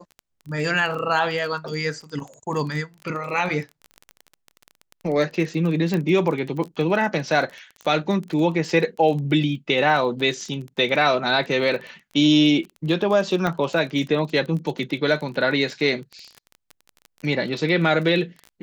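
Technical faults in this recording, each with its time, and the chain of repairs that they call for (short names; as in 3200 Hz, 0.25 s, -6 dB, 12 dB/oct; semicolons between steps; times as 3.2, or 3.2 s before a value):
crackle 23/s -29 dBFS
5.94 pop -13 dBFS
13.47 pop -12 dBFS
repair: de-click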